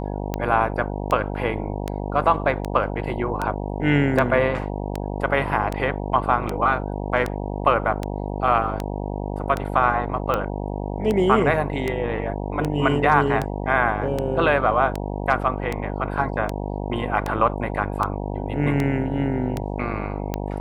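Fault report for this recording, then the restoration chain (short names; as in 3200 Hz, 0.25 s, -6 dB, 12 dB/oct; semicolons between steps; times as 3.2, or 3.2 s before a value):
buzz 50 Hz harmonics 19 -28 dBFS
tick 78 rpm -11 dBFS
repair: de-click; de-hum 50 Hz, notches 19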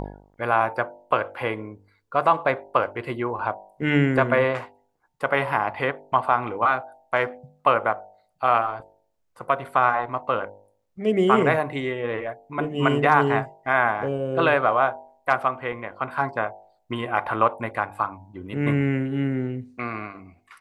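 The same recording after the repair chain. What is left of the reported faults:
none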